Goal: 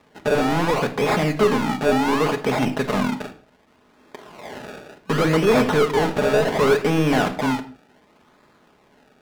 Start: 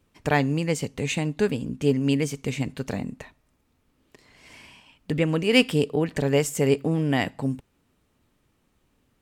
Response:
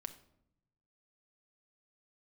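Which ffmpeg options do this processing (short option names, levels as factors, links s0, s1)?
-filter_complex "[0:a]acrusher=samples=29:mix=1:aa=0.000001:lfo=1:lforange=29:lforate=0.68,asplit=2[s0][s1];[s1]highpass=f=720:p=1,volume=31.6,asoftclip=type=tanh:threshold=0.596[s2];[s0][s2]amix=inputs=2:normalize=0,lowpass=f=2900:p=1,volume=0.501[s3];[1:a]atrim=start_sample=2205,afade=t=out:st=0.26:d=0.01,atrim=end_sample=11907,asetrate=48510,aresample=44100[s4];[s3][s4]afir=irnorm=-1:irlink=0"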